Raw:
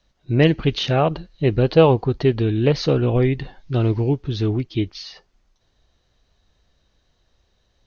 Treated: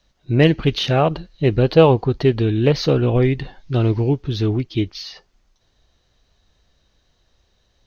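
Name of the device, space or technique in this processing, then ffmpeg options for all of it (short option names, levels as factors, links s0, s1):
exciter from parts: -filter_complex "[0:a]asplit=2[s0][s1];[s1]highpass=f=3400:p=1,asoftclip=type=tanh:threshold=0.0158,volume=0.355[s2];[s0][s2]amix=inputs=2:normalize=0,volume=1.19"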